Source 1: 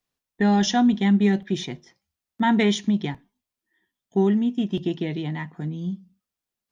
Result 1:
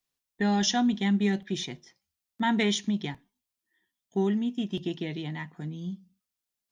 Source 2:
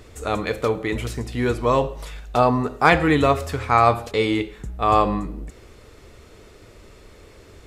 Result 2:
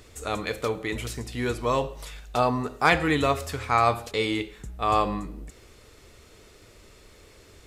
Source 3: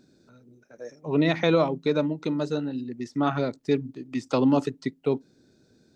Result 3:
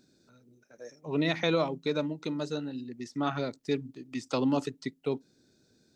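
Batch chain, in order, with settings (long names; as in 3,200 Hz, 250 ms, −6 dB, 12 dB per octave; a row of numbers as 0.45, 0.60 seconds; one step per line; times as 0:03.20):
high-shelf EQ 2,300 Hz +7.5 dB
level −6.5 dB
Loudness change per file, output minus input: −6.0, −5.5, −6.0 LU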